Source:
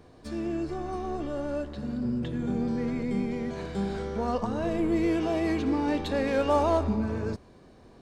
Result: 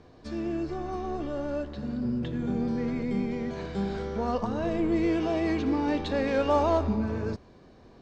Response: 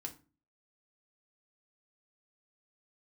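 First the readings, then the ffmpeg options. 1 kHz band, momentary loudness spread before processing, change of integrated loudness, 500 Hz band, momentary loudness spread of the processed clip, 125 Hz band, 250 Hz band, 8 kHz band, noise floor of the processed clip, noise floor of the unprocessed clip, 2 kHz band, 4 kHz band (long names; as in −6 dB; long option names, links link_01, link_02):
0.0 dB, 8 LU, 0.0 dB, 0.0 dB, 8 LU, 0.0 dB, 0.0 dB, can't be measured, −54 dBFS, −54 dBFS, 0.0 dB, 0.0 dB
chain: -af "lowpass=frequency=6700:width=0.5412,lowpass=frequency=6700:width=1.3066"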